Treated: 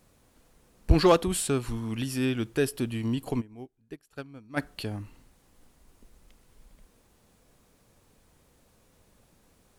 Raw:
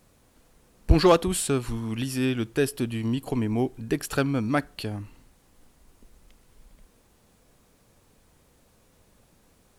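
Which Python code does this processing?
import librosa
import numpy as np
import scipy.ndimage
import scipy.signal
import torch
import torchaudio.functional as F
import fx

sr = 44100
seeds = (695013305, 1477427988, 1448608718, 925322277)

y = fx.upward_expand(x, sr, threshold_db=-31.0, expansion=2.5, at=(3.4, 4.56), fade=0.02)
y = y * librosa.db_to_amplitude(-2.0)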